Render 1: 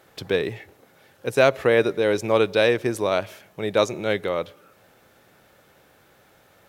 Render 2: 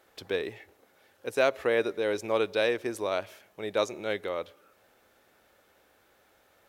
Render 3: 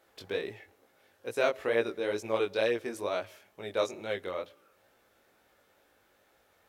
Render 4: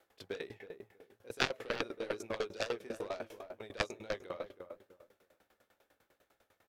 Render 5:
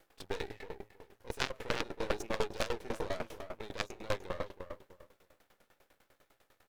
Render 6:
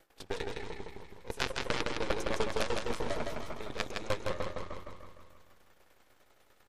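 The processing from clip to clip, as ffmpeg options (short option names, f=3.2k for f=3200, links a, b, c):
-af "equalizer=f=140:t=o:w=0.86:g=-12.5,volume=-7dB"
-af "flanger=delay=17:depth=4.6:speed=2.2"
-filter_complex "[0:a]aeval=exprs='0.237*(cos(1*acos(clip(val(0)/0.237,-1,1)))-cos(1*PI/2))+0.106*(cos(3*acos(clip(val(0)/0.237,-1,1)))-cos(3*PI/2))':c=same,asplit=2[a][b];[b]adelay=321,lowpass=f=990:p=1,volume=-6.5dB,asplit=2[c][d];[d]adelay=321,lowpass=f=990:p=1,volume=0.3,asplit=2[e][f];[f]adelay=321,lowpass=f=990:p=1,volume=0.3,asplit=2[g][h];[h]adelay=321,lowpass=f=990:p=1,volume=0.3[i];[a][c][e][g][i]amix=inputs=5:normalize=0,aeval=exprs='val(0)*pow(10,-21*if(lt(mod(10*n/s,1),2*abs(10)/1000),1-mod(10*n/s,1)/(2*abs(10)/1000),(mod(10*n/s,1)-2*abs(10)/1000)/(1-2*abs(10)/1000))/20)':c=same,volume=10dB"
-af "alimiter=limit=-19.5dB:level=0:latency=1:release=240,aeval=exprs='max(val(0),0)':c=same,volume=7.5dB"
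-filter_complex "[0:a]asplit=2[a][b];[b]aecho=0:1:161|322|483|644|805|966|1127|1288:0.668|0.368|0.202|0.111|0.0612|0.0336|0.0185|0.0102[c];[a][c]amix=inputs=2:normalize=0,volume=1.5dB" -ar 48000 -c:a libmp3lame -b:a 56k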